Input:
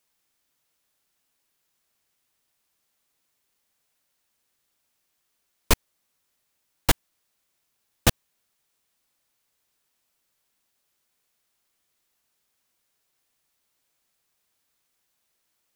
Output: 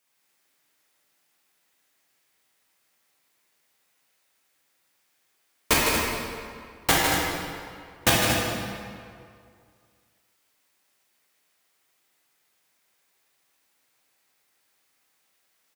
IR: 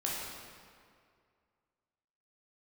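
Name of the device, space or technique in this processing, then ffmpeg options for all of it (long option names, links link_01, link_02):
stadium PA: -filter_complex "[0:a]highpass=frequency=200:poles=1,equalizer=frequency=2000:width_type=o:width=0.59:gain=4,aecho=1:1:154.5|230.3:0.447|0.355[link_01];[1:a]atrim=start_sample=2205[link_02];[link_01][link_02]afir=irnorm=-1:irlink=0"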